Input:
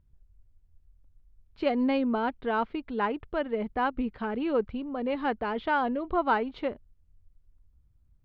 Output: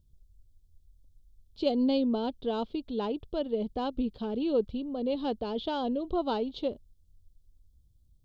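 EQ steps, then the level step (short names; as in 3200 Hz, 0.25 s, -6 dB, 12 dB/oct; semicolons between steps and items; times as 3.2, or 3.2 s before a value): EQ curve 540 Hz 0 dB, 2000 Hz -21 dB, 3400 Hz +8 dB; 0.0 dB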